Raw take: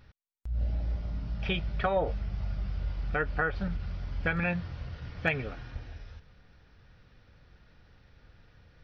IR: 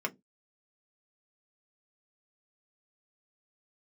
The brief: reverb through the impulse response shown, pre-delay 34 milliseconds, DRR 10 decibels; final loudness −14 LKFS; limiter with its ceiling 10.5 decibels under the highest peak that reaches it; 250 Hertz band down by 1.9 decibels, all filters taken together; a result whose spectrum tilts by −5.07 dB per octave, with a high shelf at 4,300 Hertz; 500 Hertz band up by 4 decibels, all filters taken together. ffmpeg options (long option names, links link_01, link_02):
-filter_complex "[0:a]equalizer=frequency=250:width_type=o:gain=-5,equalizer=frequency=500:width_type=o:gain=5.5,highshelf=frequency=4300:gain=3.5,alimiter=limit=-22.5dB:level=0:latency=1,asplit=2[link_01][link_02];[1:a]atrim=start_sample=2205,adelay=34[link_03];[link_02][link_03]afir=irnorm=-1:irlink=0,volume=-15dB[link_04];[link_01][link_04]amix=inputs=2:normalize=0,volume=20.5dB"